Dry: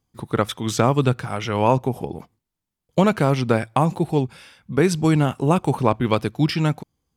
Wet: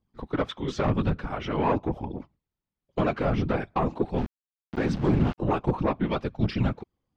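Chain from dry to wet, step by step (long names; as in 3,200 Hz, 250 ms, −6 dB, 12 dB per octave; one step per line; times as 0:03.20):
flanger 0.46 Hz, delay 0.1 ms, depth 9 ms, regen +23%
soft clipping −17 dBFS, distortion −13 dB
random phases in short frames
0:04.18–0:05.38: centre clipping without the shift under −32.5 dBFS
high-frequency loss of the air 200 metres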